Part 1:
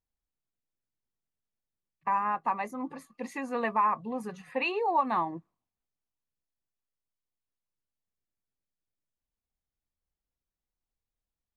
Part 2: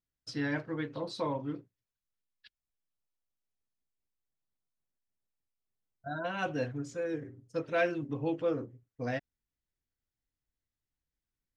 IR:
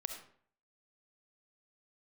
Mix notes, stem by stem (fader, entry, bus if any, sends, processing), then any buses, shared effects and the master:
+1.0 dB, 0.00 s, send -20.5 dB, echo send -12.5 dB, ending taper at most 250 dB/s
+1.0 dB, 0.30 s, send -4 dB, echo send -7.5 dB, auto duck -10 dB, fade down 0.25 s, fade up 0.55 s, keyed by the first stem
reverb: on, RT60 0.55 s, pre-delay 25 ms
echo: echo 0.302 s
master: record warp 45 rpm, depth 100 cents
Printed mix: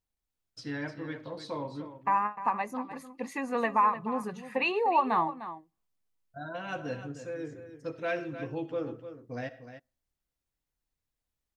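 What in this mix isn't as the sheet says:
stem 2 +1.0 dB -> -6.5 dB; master: missing record warp 45 rpm, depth 100 cents

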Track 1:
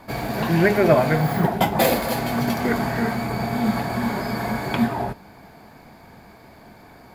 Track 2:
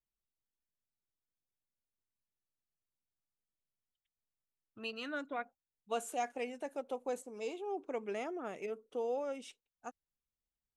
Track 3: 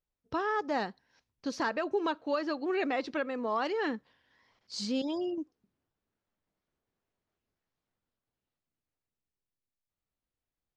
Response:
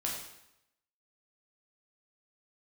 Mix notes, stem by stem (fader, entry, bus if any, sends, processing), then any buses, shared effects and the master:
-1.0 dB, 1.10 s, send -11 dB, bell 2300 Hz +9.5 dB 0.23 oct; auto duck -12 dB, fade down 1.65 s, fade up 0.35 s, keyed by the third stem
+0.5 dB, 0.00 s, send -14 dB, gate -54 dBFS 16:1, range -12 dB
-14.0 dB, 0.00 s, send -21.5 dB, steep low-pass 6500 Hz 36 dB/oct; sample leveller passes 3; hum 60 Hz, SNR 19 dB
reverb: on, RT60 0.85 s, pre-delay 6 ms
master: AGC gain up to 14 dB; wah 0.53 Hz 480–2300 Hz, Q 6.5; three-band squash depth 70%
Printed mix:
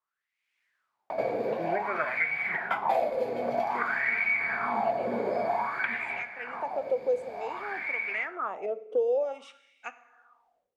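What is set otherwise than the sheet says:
stem 2: missing gate -54 dBFS 16:1, range -12 dB; stem 3: muted

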